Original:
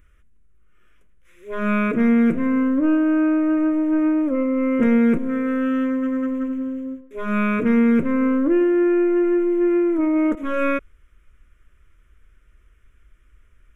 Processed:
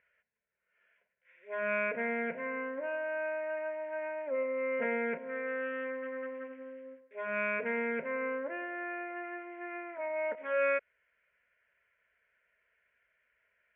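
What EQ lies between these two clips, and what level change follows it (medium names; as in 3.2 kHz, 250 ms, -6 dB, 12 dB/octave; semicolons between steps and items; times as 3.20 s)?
band-pass 610–2500 Hz; distance through air 150 m; static phaser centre 1.2 kHz, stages 6; 0.0 dB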